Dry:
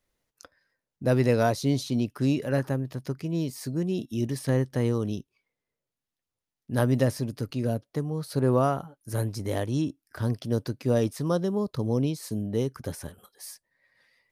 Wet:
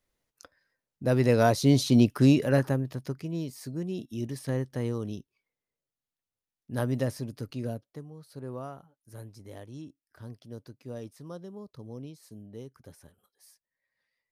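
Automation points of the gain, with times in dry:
1.1 s -2 dB
2.02 s +7 dB
3.47 s -5.5 dB
7.64 s -5.5 dB
8.15 s -16 dB

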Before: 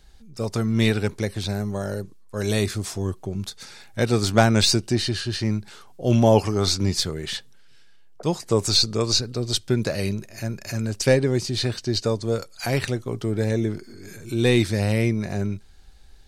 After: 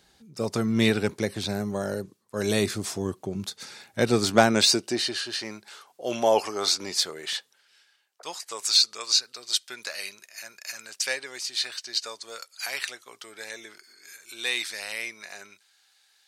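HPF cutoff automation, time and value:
4.14 s 160 Hz
5.34 s 560 Hz
7.34 s 560 Hz
8.52 s 1400 Hz

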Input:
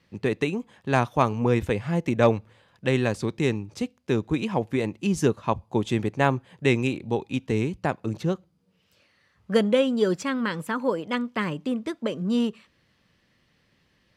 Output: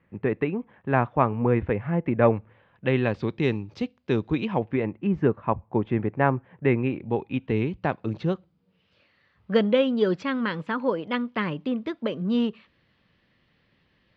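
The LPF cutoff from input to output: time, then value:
LPF 24 dB/oct
2.33 s 2200 Hz
3.6 s 4400 Hz
4.3 s 4400 Hz
4.94 s 2100 Hz
6.76 s 2100 Hz
7.97 s 4100 Hz

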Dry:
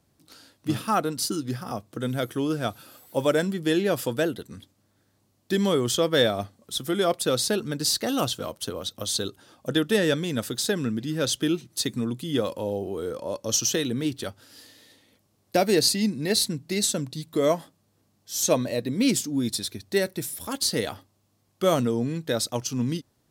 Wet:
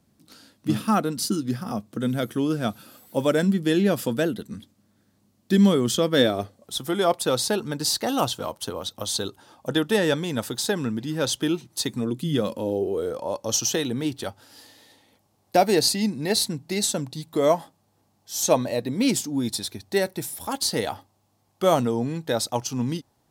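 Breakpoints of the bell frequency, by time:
bell +9.5 dB 0.57 oct
6.11 s 210 Hz
6.77 s 880 Hz
11.97 s 880 Hz
12.29 s 140 Hz
13.22 s 830 Hz

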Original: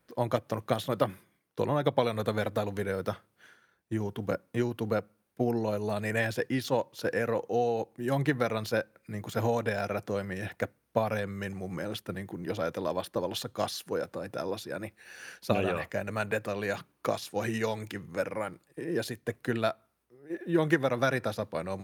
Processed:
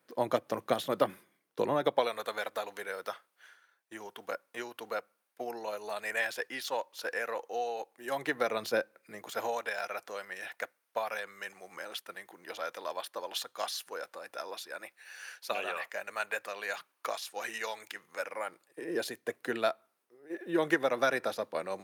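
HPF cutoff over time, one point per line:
1.73 s 250 Hz
2.23 s 750 Hz
7.96 s 750 Hz
8.71 s 280 Hz
9.69 s 840 Hz
18.16 s 840 Hz
18.91 s 360 Hz

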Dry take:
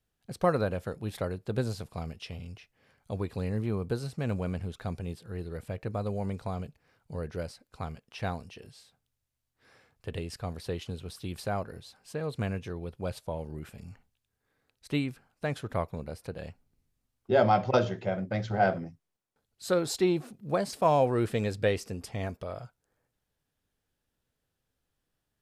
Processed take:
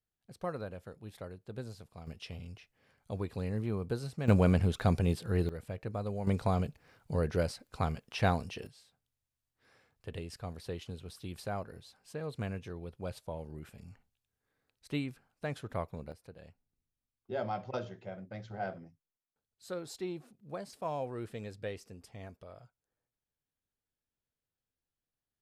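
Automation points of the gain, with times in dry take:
-12 dB
from 2.07 s -3.5 dB
from 4.28 s +7.5 dB
from 5.49 s -4 dB
from 6.27 s +5 dB
from 8.67 s -5.5 dB
from 16.12 s -13 dB

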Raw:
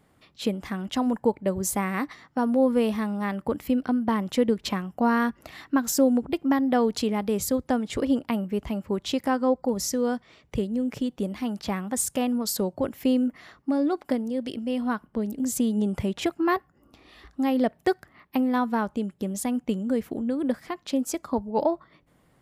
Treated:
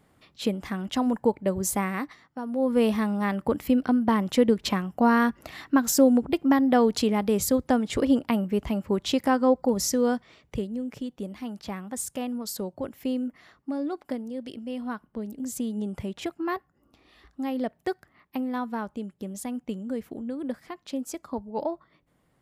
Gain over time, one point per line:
1.83 s 0 dB
2.43 s -10 dB
2.83 s +2 dB
10.1 s +2 dB
10.88 s -6 dB

